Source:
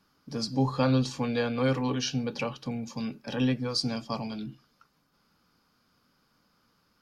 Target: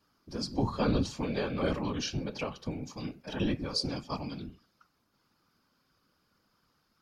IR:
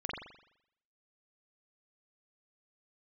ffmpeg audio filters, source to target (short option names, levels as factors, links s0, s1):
-af "bandreject=f=164.6:t=h:w=4,bandreject=f=329.2:t=h:w=4,bandreject=f=493.8:t=h:w=4,bandreject=f=658.4:t=h:w=4,bandreject=f=823:t=h:w=4,bandreject=f=987.6:t=h:w=4,bandreject=f=1152.2:t=h:w=4,bandreject=f=1316.8:t=h:w=4,bandreject=f=1481.4:t=h:w=4,bandreject=f=1646:t=h:w=4,bandreject=f=1810.6:t=h:w=4,bandreject=f=1975.2:t=h:w=4,bandreject=f=2139.8:t=h:w=4,bandreject=f=2304.4:t=h:w=4,bandreject=f=2469:t=h:w=4,bandreject=f=2633.6:t=h:w=4,bandreject=f=2798.2:t=h:w=4,afftfilt=real='hypot(re,im)*cos(2*PI*random(0))':imag='hypot(re,im)*sin(2*PI*random(1))':win_size=512:overlap=0.75,volume=1.33"